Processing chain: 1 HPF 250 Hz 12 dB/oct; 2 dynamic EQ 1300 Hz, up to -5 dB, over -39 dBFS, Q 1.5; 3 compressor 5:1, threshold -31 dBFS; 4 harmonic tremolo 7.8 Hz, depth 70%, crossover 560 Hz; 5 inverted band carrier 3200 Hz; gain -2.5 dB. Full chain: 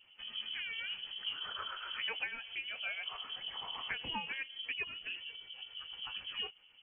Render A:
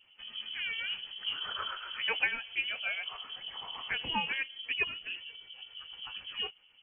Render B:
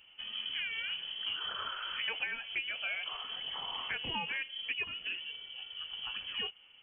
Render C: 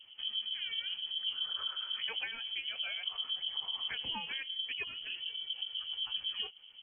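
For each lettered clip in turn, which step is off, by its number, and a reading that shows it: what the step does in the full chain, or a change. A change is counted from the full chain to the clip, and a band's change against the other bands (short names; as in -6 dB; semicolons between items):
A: 3, mean gain reduction 2.5 dB; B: 4, 125 Hz band +2.0 dB; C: 1, crest factor change -2.0 dB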